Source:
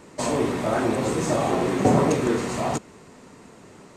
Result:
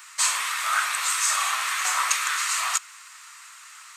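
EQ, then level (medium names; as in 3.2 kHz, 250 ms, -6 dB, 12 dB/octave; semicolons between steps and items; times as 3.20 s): Chebyshev high-pass 1.2 kHz, order 4; treble shelf 9.8 kHz +11.5 dB; +9.0 dB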